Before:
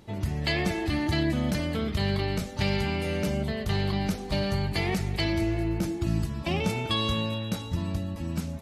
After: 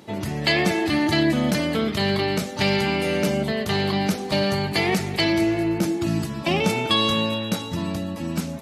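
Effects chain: HPF 180 Hz 12 dB/oct; gain +8 dB

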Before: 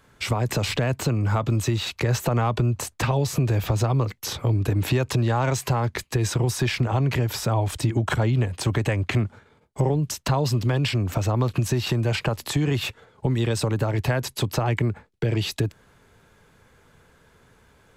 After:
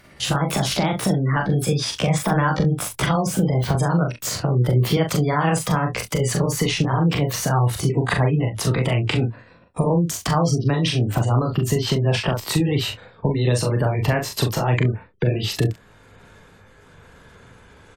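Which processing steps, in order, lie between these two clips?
gliding pitch shift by +5 st ending unshifted; spectral gate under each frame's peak -30 dB strong; early reflections 31 ms -11 dB, 41 ms -5 dB, 67 ms -18 dB; in parallel at 0 dB: compressor, threshold -35 dBFS, peak gain reduction 17.5 dB; on the sum: gain +1.5 dB

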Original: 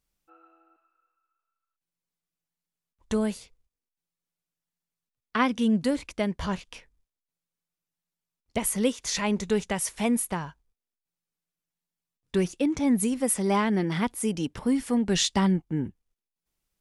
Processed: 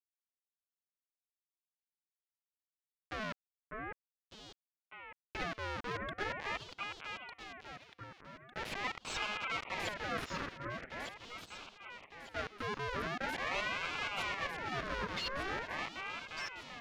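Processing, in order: spectral contrast raised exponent 2.5; Schmitt trigger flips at -34 dBFS; notch 6900 Hz, Q 8.1; limiter -27.5 dBFS, peak gain reduction 5 dB; HPF 410 Hz 12 dB/oct; air absorption 170 m; echo with dull and thin repeats by turns 0.601 s, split 1300 Hz, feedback 63%, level -2 dB; ring modulator with a swept carrier 1300 Hz, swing 45%, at 0.43 Hz; gain +1 dB

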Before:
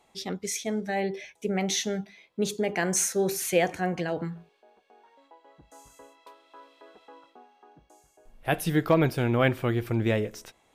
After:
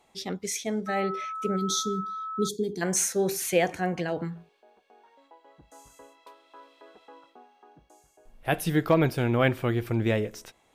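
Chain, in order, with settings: 1.56–2.81 spectral gain 470–3200 Hz -27 dB; 0.86–2.47 whine 1300 Hz -32 dBFS

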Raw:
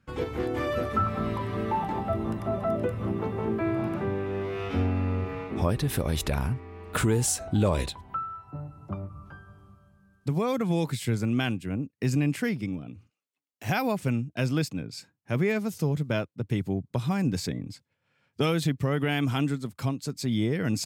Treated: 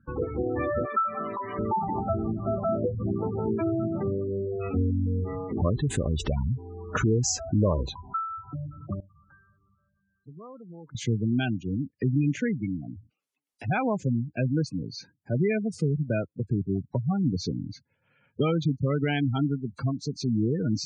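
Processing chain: nonlinear frequency compression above 3900 Hz 1.5:1; 0.85–1.59 weighting filter A; spectral gate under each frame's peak -15 dB strong; in parallel at -2 dB: compressor, threshold -40 dBFS, peak gain reduction 18.5 dB; 9–10.95 on the sum: pre-emphasis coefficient 0.9

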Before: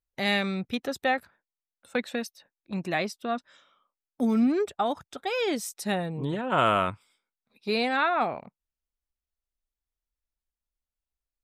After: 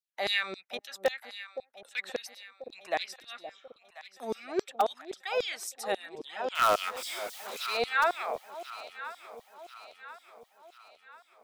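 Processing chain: 6.55–7.77 zero-crossing step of -30.5 dBFS; LFO high-pass saw down 3.7 Hz 380–5700 Hz; echo with dull and thin repeats by turns 0.519 s, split 800 Hz, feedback 69%, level -11 dB; in parallel at -9 dB: wrapped overs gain 11 dB; on the sum: gain -7 dB

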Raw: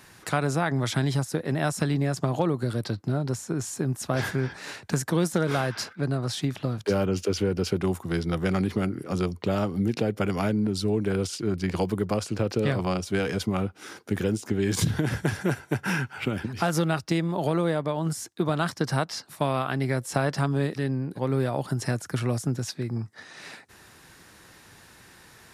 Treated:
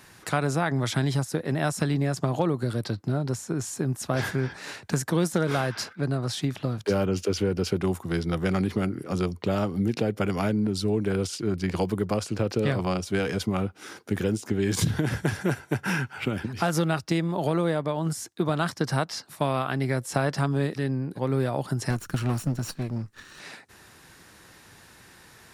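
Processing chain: 21.9–23.4 minimum comb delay 0.7 ms

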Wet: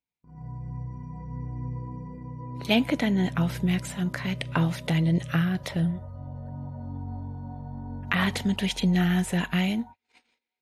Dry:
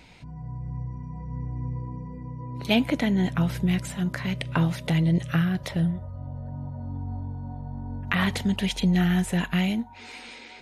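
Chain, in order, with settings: gate -38 dBFS, range -44 dB; low shelf 84 Hz -6.5 dB

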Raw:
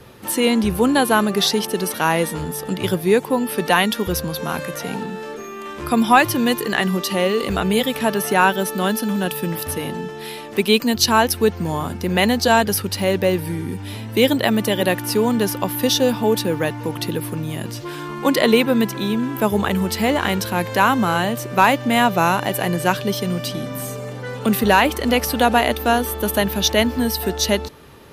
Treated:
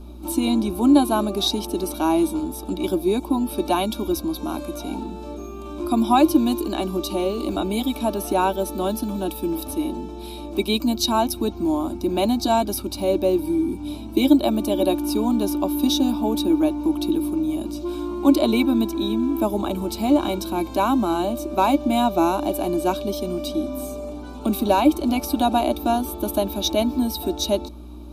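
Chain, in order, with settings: small resonant body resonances 320/570/2300/3800 Hz, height 17 dB, ringing for 50 ms; hum 60 Hz, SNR 17 dB; fixed phaser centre 510 Hz, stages 6; gain -6.5 dB

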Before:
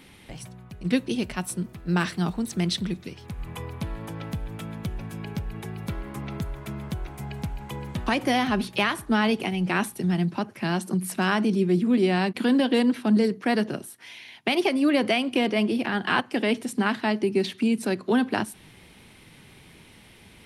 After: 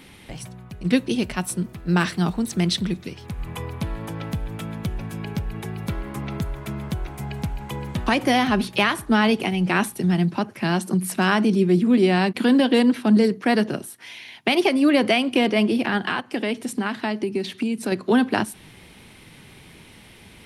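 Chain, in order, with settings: 15.97–17.92 compressor 4:1, threshold -26 dBFS, peak gain reduction 8 dB; gain +4 dB

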